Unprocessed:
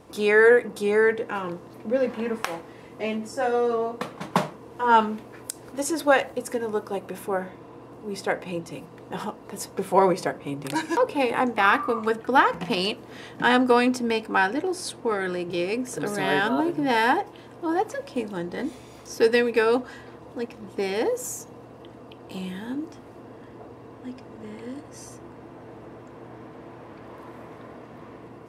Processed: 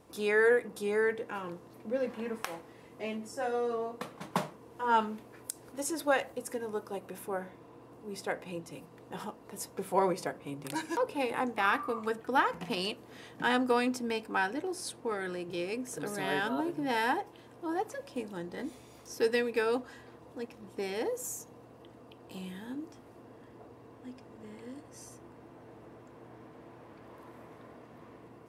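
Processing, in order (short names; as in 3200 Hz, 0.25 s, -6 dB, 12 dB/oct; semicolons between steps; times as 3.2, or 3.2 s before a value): high shelf 8900 Hz +7.5 dB; gain -9 dB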